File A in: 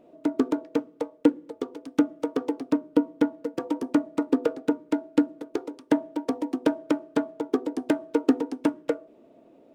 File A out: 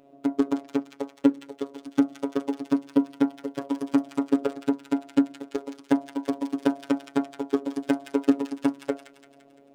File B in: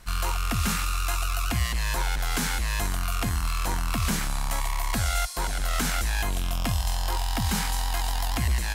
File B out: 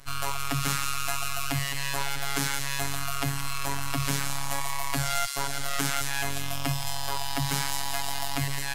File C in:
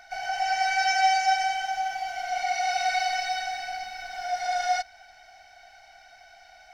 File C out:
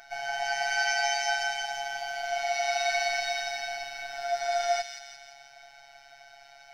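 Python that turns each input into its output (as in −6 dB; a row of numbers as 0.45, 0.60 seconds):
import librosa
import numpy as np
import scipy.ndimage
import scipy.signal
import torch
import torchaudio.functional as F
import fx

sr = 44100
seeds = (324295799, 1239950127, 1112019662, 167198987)

y = fx.echo_wet_highpass(x, sr, ms=171, feedback_pct=53, hz=2200.0, wet_db=-5.5)
y = fx.robotise(y, sr, hz=139.0)
y = y * librosa.db_to_amplitude(1.5)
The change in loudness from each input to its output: 0.0, −1.5, −2.5 LU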